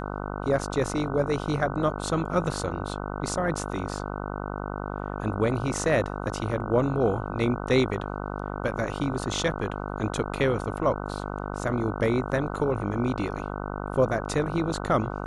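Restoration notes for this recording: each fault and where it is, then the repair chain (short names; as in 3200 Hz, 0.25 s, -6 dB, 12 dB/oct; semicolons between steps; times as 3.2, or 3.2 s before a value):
buzz 50 Hz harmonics 30 -33 dBFS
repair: de-hum 50 Hz, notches 30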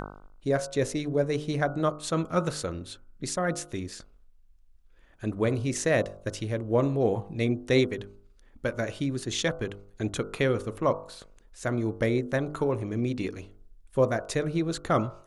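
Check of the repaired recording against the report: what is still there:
none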